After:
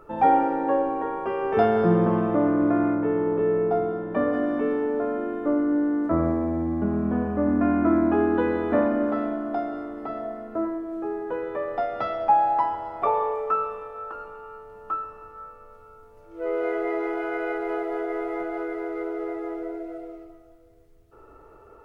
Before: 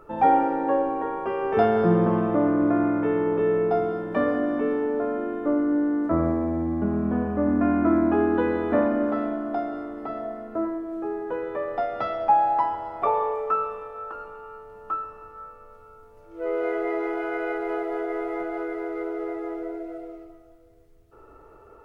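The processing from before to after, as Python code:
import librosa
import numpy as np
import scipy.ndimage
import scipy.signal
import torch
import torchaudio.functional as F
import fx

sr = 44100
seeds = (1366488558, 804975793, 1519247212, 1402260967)

y = fx.lowpass(x, sr, hz=fx.line((2.94, 1300.0), (4.32, 1700.0)), slope=6, at=(2.94, 4.32), fade=0.02)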